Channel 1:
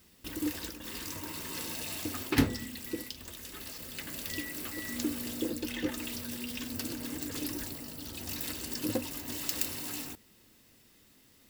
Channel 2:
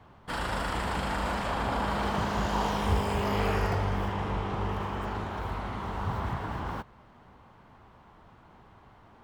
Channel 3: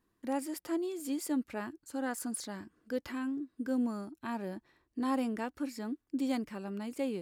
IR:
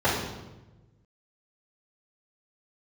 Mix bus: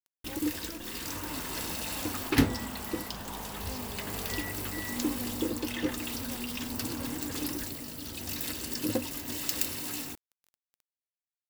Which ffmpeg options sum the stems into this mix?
-filter_complex "[0:a]volume=2dB[link_01];[1:a]adelay=750,volume=-13.5dB[link_02];[2:a]acrusher=bits=6:dc=4:mix=0:aa=0.000001,volume=-14dB[link_03];[link_01][link_02][link_03]amix=inputs=3:normalize=0,acrusher=bits=7:mix=0:aa=0.000001"

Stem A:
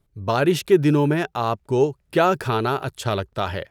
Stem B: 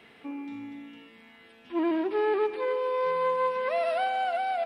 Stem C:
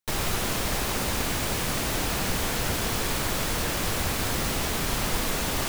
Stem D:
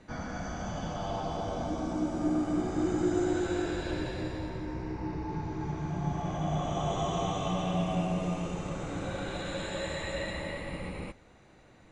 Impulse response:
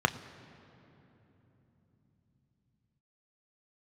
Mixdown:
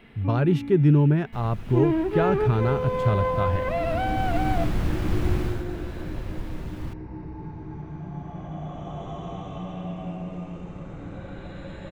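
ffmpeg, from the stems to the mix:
-filter_complex "[0:a]volume=-8.5dB,asplit=2[link_01][link_02];[1:a]aemphasis=mode=production:type=50kf,volume=-0.5dB[link_03];[2:a]acrusher=bits=2:mode=log:mix=0:aa=0.000001,adelay=1250,volume=-7dB,afade=type=out:start_time=5.4:duration=0.24:silence=0.316228[link_04];[3:a]acrossover=split=240[link_05][link_06];[link_05]acompressor=threshold=-45dB:ratio=6[link_07];[link_07][link_06]amix=inputs=2:normalize=0,adelay=2100,volume=-6dB[link_08];[link_02]apad=whole_len=305773[link_09];[link_04][link_09]sidechaincompress=threshold=-45dB:ratio=3:attack=40:release=857[link_10];[link_01][link_03][link_10][link_08]amix=inputs=4:normalize=0,bass=frequency=250:gain=15,treble=frequency=4000:gain=-14"

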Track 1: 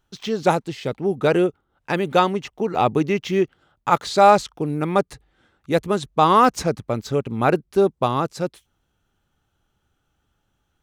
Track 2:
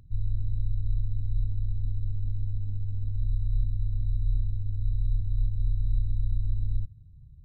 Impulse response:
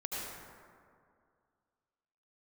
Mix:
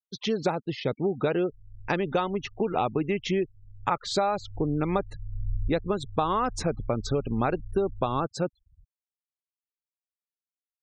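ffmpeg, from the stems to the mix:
-filter_complex "[0:a]acompressor=threshold=-22dB:ratio=12,volume=0dB,asplit=2[link_01][link_02];[1:a]adelay=1400,volume=-2dB,afade=type=in:start_time=4.27:duration=0.32:silence=0.237137[link_03];[link_02]apad=whole_len=390197[link_04];[link_03][link_04]sidechaincompress=threshold=-43dB:ratio=3:attack=11:release=314[link_05];[link_01][link_05]amix=inputs=2:normalize=0,afftfilt=real='re*gte(hypot(re,im),0.0126)':imag='im*gte(hypot(re,im),0.0126)':win_size=1024:overlap=0.75"

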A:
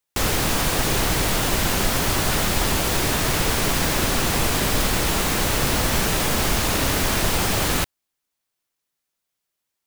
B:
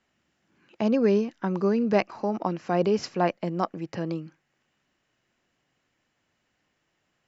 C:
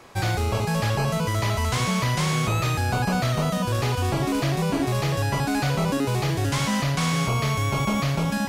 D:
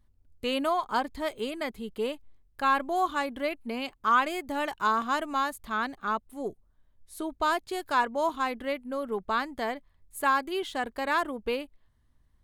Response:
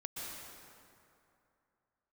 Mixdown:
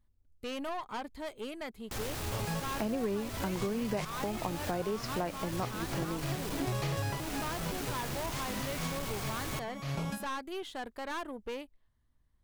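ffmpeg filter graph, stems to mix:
-filter_complex "[0:a]asoftclip=type=tanh:threshold=-19.5dB,adelay=1750,volume=-14dB[link_01];[1:a]adelay=2000,volume=-1.5dB[link_02];[2:a]dynaudnorm=framelen=230:gausssize=9:maxgain=10dB,adelay=1800,volume=-9.5dB[link_03];[3:a]aeval=exprs='(tanh(25.1*val(0)+0.4)-tanh(0.4))/25.1':channel_layout=same,volume=-5dB,asplit=2[link_04][link_05];[link_05]apad=whole_len=453703[link_06];[link_03][link_06]sidechaincompress=threshold=-54dB:ratio=12:attack=16:release=161[link_07];[link_01][link_02][link_07][link_04]amix=inputs=4:normalize=0,acompressor=threshold=-31dB:ratio=5"

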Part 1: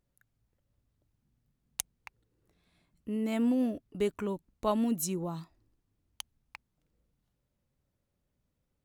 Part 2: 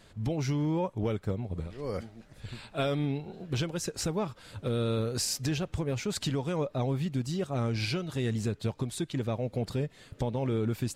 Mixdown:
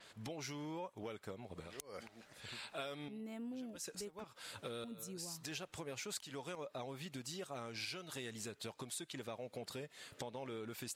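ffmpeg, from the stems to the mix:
ffmpeg -i stem1.wav -i stem2.wav -filter_complex "[0:a]volume=-11.5dB,asplit=3[link_01][link_02][link_03];[link_01]atrim=end=4.24,asetpts=PTS-STARTPTS,afade=type=out:start_time=4.236:duration=0.004:curve=hsin[link_04];[link_02]atrim=start=4.24:end=4.84,asetpts=PTS-STARTPTS,volume=0[link_05];[link_03]atrim=start=4.84,asetpts=PTS-STARTPTS,afade=type=in:duration=0.004:curve=hsin[link_06];[link_04][link_05][link_06]concat=n=3:v=0:a=1,asplit=2[link_07][link_08];[1:a]highpass=frequency=910:poles=1,adynamicequalizer=threshold=0.00251:dfrequency=7100:dqfactor=0.7:tfrequency=7100:tqfactor=0.7:attack=5:release=100:ratio=0.375:range=2.5:mode=boostabove:tftype=highshelf,volume=2dB[link_09];[link_08]apad=whole_len=483267[link_10];[link_09][link_10]sidechaincompress=threshold=-59dB:ratio=12:attack=26:release=183[link_11];[link_07][link_11]amix=inputs=2:normalize=0,acompressor=threshold=-45dB:ratio=3" out.wav

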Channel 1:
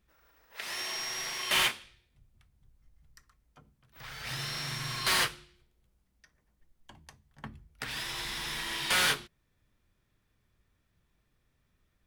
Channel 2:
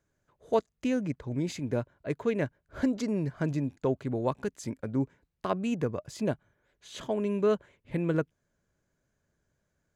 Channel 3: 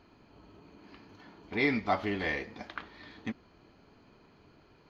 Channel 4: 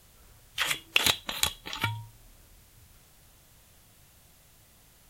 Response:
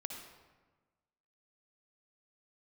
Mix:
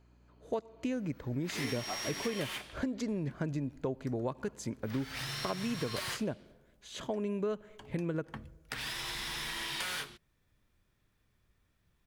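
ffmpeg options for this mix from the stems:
-filter_complex "[0:a]acompressor=threshold=-34dB:ratio=12,adelay=900,volume=0dB[link_01];[1:a]volume=-1.5dB,asplit=2[link_02][link_03];[link_03]volume=-19dB[link_04];[2:a]highpass=120,aeval=exprs='val(0)+0.00282*(sin(2*PI*60*n/s)+sin(2*PI*2*60*n/s)/2+sin(2*PI*3*60*n/s)/3+sin(2*PI*4*60*n/s)/4+sin(2*PI*5*60*n/s)/5)':channel_layout=same,volume=-11dB[link_05];[4:a]atrim=start_sample=2205[link_06];[link_04][link_06]afir=irnorm=-1:irlink=0[link_07];[link_01][link_02][link_05][link_07]amix=inputs=4:normalize=0,acompressor=threshold=-31dB:ratio=6"

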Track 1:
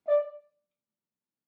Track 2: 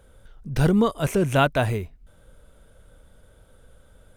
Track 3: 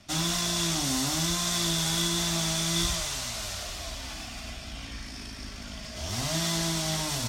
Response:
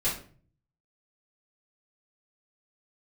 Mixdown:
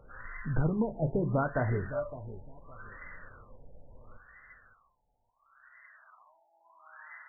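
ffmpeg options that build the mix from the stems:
-filter_complex "[0:a]adelay=1850,volume=-6dB[link_01];[1:a]acompressor=threshold=-25dB:ratio=6,volume=3dB,asplit=3[link_02][link_03][link_04];[link_03]volume=-23dB[link_05];[link_04]volume=-13.5dB[link_06];[2:a]highpass=frequency=1500:width=0.5412,highpass=frequency=1500:width=1.3066,volume=1dB,asplit=2[link_07][link_08];[link_08]volume=-18dB[link_09];[3:a]atrim=start_sample=2205[link_10];[link_05][link_09]amix=inputs=2:normalize=0[link_11];[link_11][link_10]afir=irnorm=-1:irlink=0[link_12];[link_06]aecho=0:1:562|1124|1686|2248:1|0.24|0.0576|0.0138[link_13];[link_01][link_02][link_07][link_12][link_13]amix=inputs=5:normalize=0,flanger=delay=6.5:depth=2.1:regen=-54:speed=1.6:shape=sinusoidal,afftfilt=real='re*lt(b*sr/1024,900*pow(2100/900,0.5+0.5*sin(2*PI*0.73*pts/sr)))':imag='im*lt(b*sr/1024,900*pow(2100/900,0.5+0.5*sin(2*PI*0.73*pts/sr)))':win_size=1024:overlap=0.75"

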